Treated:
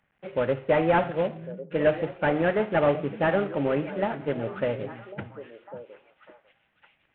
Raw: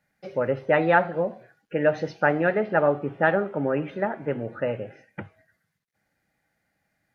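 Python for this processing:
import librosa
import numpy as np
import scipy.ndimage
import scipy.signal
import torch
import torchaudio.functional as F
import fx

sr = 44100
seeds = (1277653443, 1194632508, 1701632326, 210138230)

y = fx.cvsd(x, sr, bps=16000)
y = fx.echo_stepped(y, sr, ms=550, hz=160.0, octaves=1.4, feedback_pct=70, wet_db=-9)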